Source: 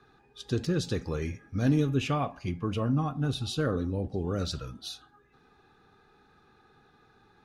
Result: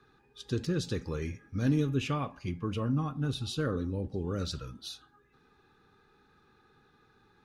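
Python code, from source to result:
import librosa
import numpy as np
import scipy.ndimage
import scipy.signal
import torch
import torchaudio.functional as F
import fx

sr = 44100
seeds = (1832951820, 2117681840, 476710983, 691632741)

y = fx.peak_eq(x, sr, hz=700.0, db=-9.0, octaves=0.32)
y = F.gain(torch.from_numpy(y), -2.5).numpy()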